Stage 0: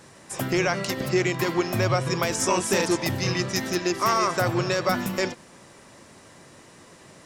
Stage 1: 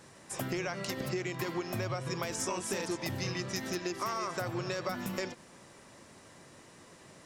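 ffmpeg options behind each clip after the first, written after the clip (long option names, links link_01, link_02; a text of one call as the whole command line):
ffmpeg -i in.wav -af "acompressor=threshold=-26dB:ratio=6,volume=-5.5dB" out.wav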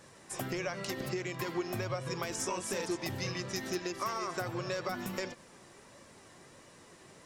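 ffmpeg -i in.wav -af "flanger=delay=1.7:depth=1.1:regen=69:speed=1.5:shape=sinusoidal,volume=3.5dB" out.wav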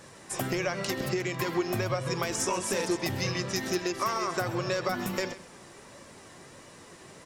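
ffmpeg -i in.wav -af "aecho=1:1:132:0.15,volume=6dB" out.wav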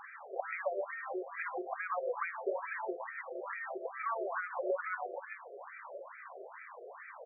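ffmpeg -i in.wav -af "acompressor=threshold=-32dB:ratio=6,alimiter=level_in=2dB:limit=-24dB:level=0:latency=1:release=370,volume=-2dB,afftfilt=real='re*between(b*sr/1024,490*pow(1800/490,0.5+0.5*sin(2*PI*2.3*pts/sr))/1.41,490*pow(1800/490,0.5+0.5*sin(2*PI*2.3*pts/sr))*1.41)':imag='im*between(b*sr/1024,490*pow(1800/490,0.5+0.5*sin(2*PI*2.3*pts/sr))/1.41,490*pow(1800/490,0.5+0.5*sin(2*PI*2.3*pts/sr))*1.41)':win_size=1024:overlap=0.75,volume=8.5dB" out.wav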